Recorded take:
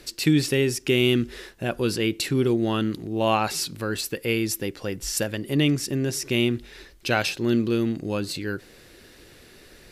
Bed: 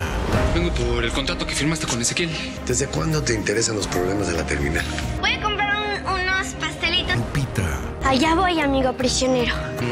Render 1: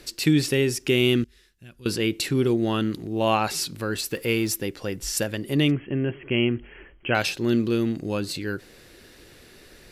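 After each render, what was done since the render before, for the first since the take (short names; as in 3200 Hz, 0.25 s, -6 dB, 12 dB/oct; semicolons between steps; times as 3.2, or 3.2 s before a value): 1.24–1.86 passive tone stack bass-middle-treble 6-0-2; 4.11–4.56 G.711 law mismatch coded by mu; 5.71–7.15 brick-wall FIR low-pass 3300 Hz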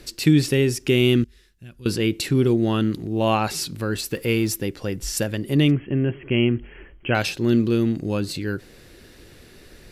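low shelf 270 Hz +6.5 dB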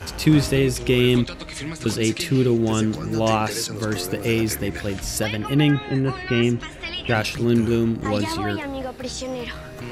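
add bed -10 dB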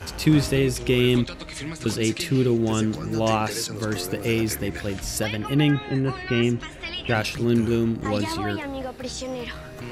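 gain -2 dB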